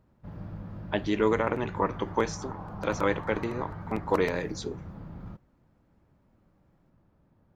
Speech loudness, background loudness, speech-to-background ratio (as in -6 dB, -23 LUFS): -30.0 LUFS, -42.0 LUFS, 12.0 dB